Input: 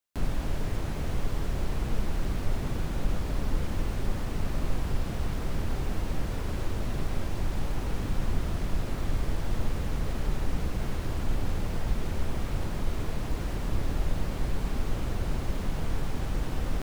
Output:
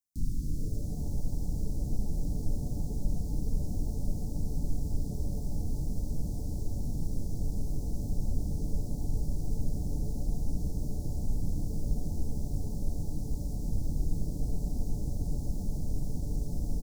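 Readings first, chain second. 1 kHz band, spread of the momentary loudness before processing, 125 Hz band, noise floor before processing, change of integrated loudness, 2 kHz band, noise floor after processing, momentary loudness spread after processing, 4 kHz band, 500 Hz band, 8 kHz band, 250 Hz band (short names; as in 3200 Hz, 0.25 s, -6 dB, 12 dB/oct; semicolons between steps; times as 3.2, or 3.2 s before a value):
-15.0 dB, 1 LU, -1.5 dB, -33 dBFS, -2.5 dB, under -40 dB, -35 dBFS, 2 LU, -13.0 dB, -8.5 dB, -2.5 dB, -2.0 dB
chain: inverse Chebyshev band-stop 580–2600 Hz, stop band 50 dB; frequency-shifting echo 0.133 s, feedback 62%, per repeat +140 Hz, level -19 dB; gain -2 dB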